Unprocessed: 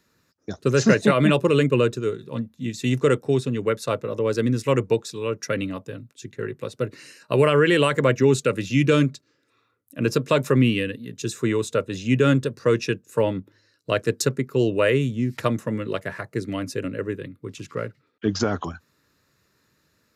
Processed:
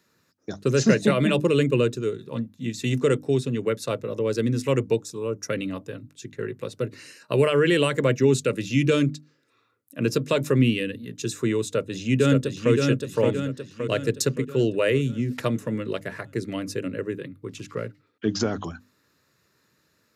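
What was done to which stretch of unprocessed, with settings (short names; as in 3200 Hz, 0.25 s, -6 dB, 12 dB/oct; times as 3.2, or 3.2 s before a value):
5.01–5.49 band shelf 2700 Hz -9.5 dB
11.62–12.73 echo throw 0.57 s, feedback 50%, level -3.5 dB
whole clip: HPF 84 Hz; notches 50/100/150/200/250/300 Hz; dynamic EQ 1100 Hz, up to -6 dB, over -35 dBFS, Q 0.76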